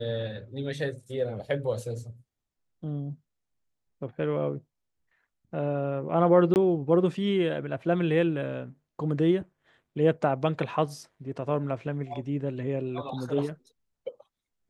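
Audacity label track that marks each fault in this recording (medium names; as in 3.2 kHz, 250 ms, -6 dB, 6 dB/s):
6.540000	6.560000	dropout 19 ms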